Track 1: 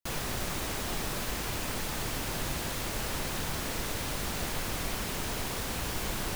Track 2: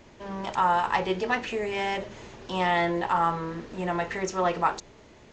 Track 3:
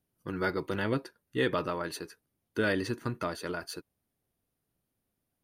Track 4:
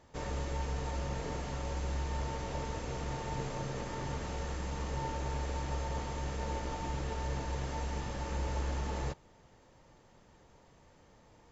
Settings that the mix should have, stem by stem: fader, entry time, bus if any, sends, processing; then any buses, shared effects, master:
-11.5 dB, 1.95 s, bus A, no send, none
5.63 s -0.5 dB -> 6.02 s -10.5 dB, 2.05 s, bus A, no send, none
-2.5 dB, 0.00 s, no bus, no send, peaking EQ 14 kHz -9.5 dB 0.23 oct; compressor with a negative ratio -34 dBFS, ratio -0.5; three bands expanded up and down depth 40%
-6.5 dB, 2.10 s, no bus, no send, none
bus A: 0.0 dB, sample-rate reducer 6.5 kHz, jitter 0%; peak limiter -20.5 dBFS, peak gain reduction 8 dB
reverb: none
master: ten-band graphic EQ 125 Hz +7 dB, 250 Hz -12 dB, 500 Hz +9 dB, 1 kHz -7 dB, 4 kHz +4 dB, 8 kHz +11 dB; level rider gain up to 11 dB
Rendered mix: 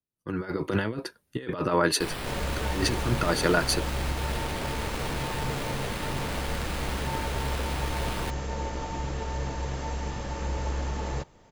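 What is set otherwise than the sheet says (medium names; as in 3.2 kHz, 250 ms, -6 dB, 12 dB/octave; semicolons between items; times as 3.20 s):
stem 2: muted; master: missing ten-band graphic EQ 125 Hz +7 dB, 250 Hz -12 dB, 500 Hz +9 dB, 1 kHz -7 dB, 4 kHz +4 dB, 8 kHz +11 dB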